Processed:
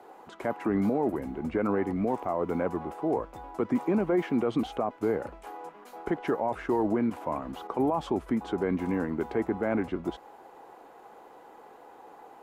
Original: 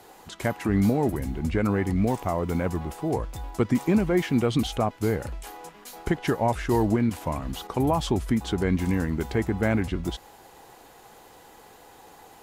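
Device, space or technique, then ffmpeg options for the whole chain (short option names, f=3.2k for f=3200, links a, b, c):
DJ mixer with the lows and highs turned down: -filter_complex "[0:a]acrossover=split=230 2000:gain=0.126 1 0.126[a][b][c];[a][b][c]amix=inputs=3:normalize=0,equalizer=f=1.8k:w=3.2:g=-4,alimiter=limit=-19.5dB:level=0:latency=1:release=13,volume=1.5dB"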